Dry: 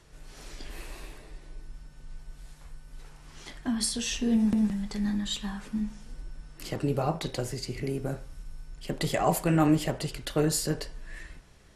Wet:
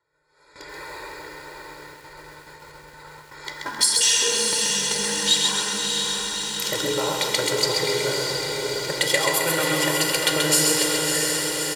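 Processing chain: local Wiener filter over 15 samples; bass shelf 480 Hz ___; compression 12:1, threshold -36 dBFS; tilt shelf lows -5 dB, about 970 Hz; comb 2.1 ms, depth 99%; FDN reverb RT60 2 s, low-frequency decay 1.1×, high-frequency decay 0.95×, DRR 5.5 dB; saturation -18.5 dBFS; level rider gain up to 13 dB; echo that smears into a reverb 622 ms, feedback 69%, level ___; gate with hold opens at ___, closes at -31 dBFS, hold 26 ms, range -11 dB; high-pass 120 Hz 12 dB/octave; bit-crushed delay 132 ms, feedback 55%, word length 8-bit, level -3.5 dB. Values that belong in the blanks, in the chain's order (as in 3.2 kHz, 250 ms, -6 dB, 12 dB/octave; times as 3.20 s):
-11 dB, -4 dB, -30 dBFS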